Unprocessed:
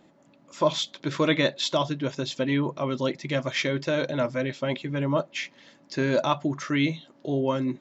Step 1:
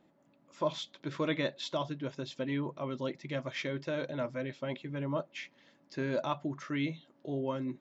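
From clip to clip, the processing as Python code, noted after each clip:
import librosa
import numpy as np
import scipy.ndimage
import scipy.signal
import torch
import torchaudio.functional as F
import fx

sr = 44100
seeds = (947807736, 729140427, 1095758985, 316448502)

y = fx.high_shelf(x, sr, hz=4700.0, db=-8.0)
y = y * 10.0 ** (-9.0 / 20.0)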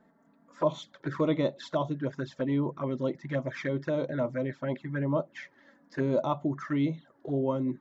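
y = fx.high_shelf_res(x, sr, hz=2100.0, db=-6.5, q=3.0)
y = fx.env_flanger(y, sr, rest_ms=4.7, full_db=-31.5)
y = y * 10.0 ** (6.5 / 20.0)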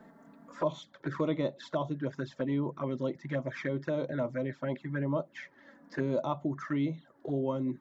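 y = fx.band_squash(x, sr, depth_pct=40)
y = y * 10.0 ** (-3.0 / 20.0)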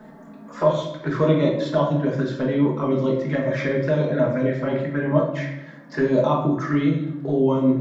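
y = fx.room_shoebox(x, sr, seeds[0], volume_m3=290.0, walls='mixed', distance_m=1.4)
y = y * 10.0 ** (7.5 / 20.0)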